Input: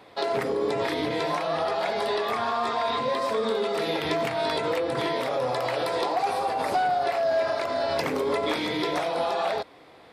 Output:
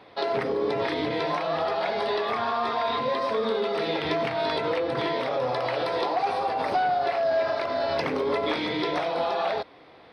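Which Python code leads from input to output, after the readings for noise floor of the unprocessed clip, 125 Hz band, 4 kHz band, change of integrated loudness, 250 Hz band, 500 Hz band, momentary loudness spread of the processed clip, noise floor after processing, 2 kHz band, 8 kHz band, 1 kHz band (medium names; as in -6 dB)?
-51 dBFS, 0.0 dB, -0.5 dB, 0.0 dB, 0.0 dB, 0.0 dB, 3 LU, -51 dBFS, 0.0 dB, no reading, 0.0 dB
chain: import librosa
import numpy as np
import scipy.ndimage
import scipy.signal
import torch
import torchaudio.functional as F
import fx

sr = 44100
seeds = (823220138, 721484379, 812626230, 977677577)

y = scipy.signal.savgol_filter(x, 15, 4, mode='constant')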